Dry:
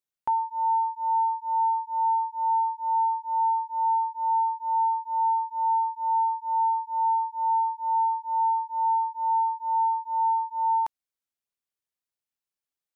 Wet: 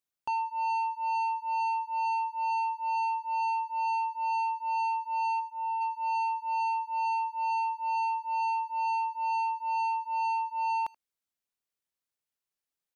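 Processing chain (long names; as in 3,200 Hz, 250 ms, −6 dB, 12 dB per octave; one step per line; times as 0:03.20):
0:05.39–0:05.80: parametric band 810 Hz → 940 Hz −6.5 dB
soft clipping −27.5 dBFS, distortion −12 dB
far-end echo of a speakerphone 80 ms, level −19 dB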